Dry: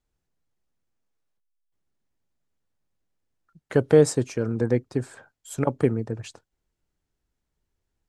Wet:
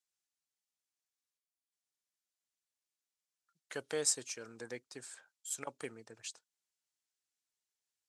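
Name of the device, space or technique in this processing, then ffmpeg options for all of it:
piezo pickup straight into a mixer: -af "lowpass=8400,aderivative,volume=1.33"

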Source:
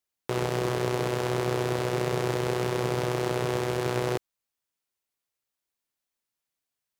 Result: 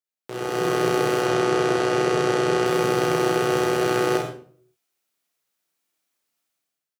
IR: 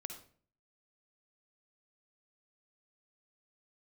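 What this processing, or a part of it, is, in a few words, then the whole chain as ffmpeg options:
far laptop microphone: -filter_complex "[0:a]bandreject=f=990:w=19,asettb=1/sr,asplit=3[s0][s1][s2];[s0]atrim=end=1.224[s3];[s1]atrim=start=1.22:end=2.66,asetpts=PTS-STARTPTS,afade=t=in:d=0.004:c=qsin,afade=t=out:st=1.436:d=0.004:c=qsin,lowpass=8600[s4];[s2]atrim=start=2.656[s5];[s3][s4]acrossfade=d=0.004:c1=hsin:c2=qsin[s6];[s6][s5]acrossfade=d=0.004:c1=qsin:c2=hsin[s7];[1:a]atrim=start_sample=2205[s8];[s7][s8]afir=irnorm=-1:irlink=0,highpass=140,dynaudnorm=f=200:g=5:m=5.96,aecho=1:1:35|48:0.473|0.531,volume=0.531"

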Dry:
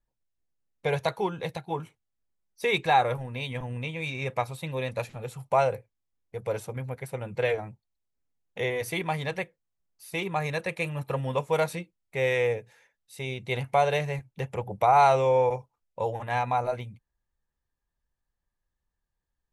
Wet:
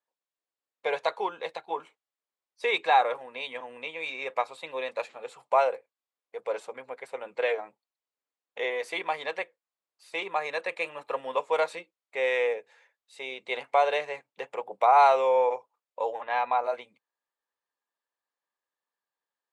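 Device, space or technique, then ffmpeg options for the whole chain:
phone speaker on a table: -filter_complex "[0:a]asplit=3[s0][s1][s2];[s0]afade=t=out:st=16.2:d=0.02[s3];[s1]lowpass=f=5000:w=0.5412,lowpass=f=5000:w=1.3066,afade=t=in:st=16.2:d=0.02,afade=t=out:st=16.62:d=0.02[s4];[s2]afade=t=in:st=16.62:d=0.02[s5];[s3][s4][s5]amix=inputs=3:normalize=0,highpass=f=350:w=0.5412,highpass=f=350:w=1.3066,equalizer=f=360:t=q:w=4:g=-5,equalizer=f=1100:t=q:w=4:g=4,equalizer=f=5900:t=q:w=4:g=-8,lowpass=f=7600:w=0.5412,lowpass=f=7600:w=1.3066"

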